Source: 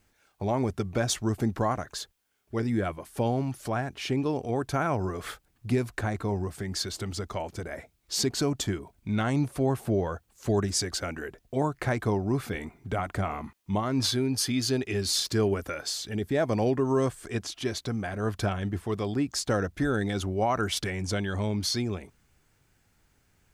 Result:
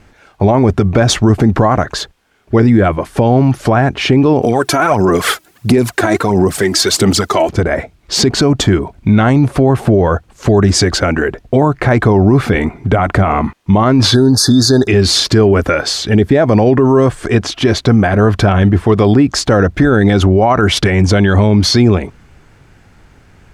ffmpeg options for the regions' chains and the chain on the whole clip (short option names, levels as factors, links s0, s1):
-filter_complex "[0:a]asettb=1/sr,asplit=3[s0][s1][s2];[s0]atrim=end=4.424[s3];[s1]atrim=start=4.42:end=7.49,asetpts=PTS-STARTPTS,afade=t=in:d=0.004:c=qsin,afade=t=out:st=3.066:d=0.004:c=qsin,highpass=180,aemphasis=mode=production:type=75fm,aphaser=in_gain=1:out_gain=1:delay=3.1:decay=0.58:speed=1.5:type=sinusoidal[s4];[s2]atrim=start=7.486[s5];[s3][s4]acrossfade=d=0.004:c1=hsin:c2=qsin[s6];[s6][s5]acrossfade=d=0.004:c1=qsin:c2=hsin,asettb=1/sr,asplit=3[s7][s8][s9];[s7]atrim=end=14.144[s10];[s8]atrim=start=14.14:end=14.88,asetpts=PTS-STARTPTS,afade=t=in:d=0.004:c=qsin,afade=t=out:st=0.736:d=0.004:c=qsin,asuperstop=centerf=2500:order=20:qfactor=1.4,highshelf=f=3100:g=10[s11];[s9]atrim=start=14.876[s12];[s10][s11]acrossfade=d=0.004:c1=hsin:c2=qsin[s13];[s13][s12]acrossfade=d=0.004:c1=qsin:c2=hsin,aemphasis=mode=reproduction:type=75fm,alimiter=level_in=15:limit=0.891:release=50:level=0:latency=1,volume=0.891"